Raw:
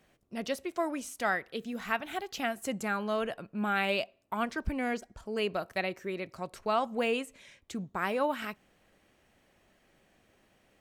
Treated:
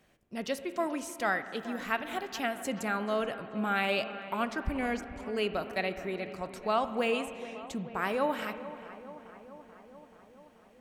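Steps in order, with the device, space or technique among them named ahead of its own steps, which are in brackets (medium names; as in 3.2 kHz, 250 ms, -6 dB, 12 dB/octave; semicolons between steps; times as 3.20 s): dub delay into a spring reverb (filtered feedback delay 433 ms, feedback 72%, low-pass 2.4 kHz, level -14.5 dB; spring tank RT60 2.2 s, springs 37/60 ms, chirp 45 ms, DRR 11.5 dB)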